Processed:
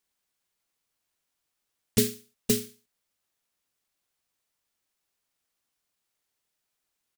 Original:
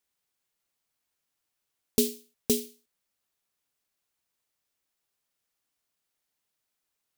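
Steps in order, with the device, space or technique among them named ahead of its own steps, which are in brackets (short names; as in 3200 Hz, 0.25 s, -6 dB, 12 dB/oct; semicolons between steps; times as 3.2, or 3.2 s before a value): octave pedal (harmoniser -12 st -6 dB)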